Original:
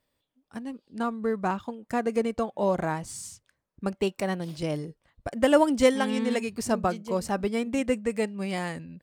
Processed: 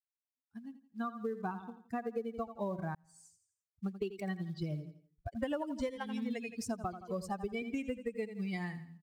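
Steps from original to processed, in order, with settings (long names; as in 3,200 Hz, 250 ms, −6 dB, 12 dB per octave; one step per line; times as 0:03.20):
spectral dynamics exaggerated over time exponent 2
0:07.07–0:07.62: comb filter 1.7 ms, depth 63%
repeating echo 84 ms, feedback 38%, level −14 dB
downward compressor 12 to 1, threshold −35 dBFS, peak gain reduction 19.5 dB
floating-point word with a short mantissa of 4 bits
high-shelf EQ 5,400 Hz −10 dB
0:02.95–0:03.88: fade in
level +2 dB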